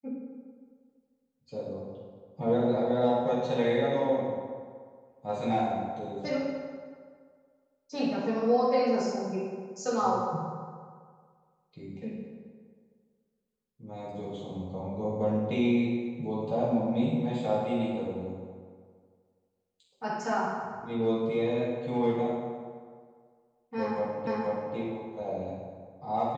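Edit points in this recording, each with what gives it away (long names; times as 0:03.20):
0:24.27: the same again, the last 0.48 s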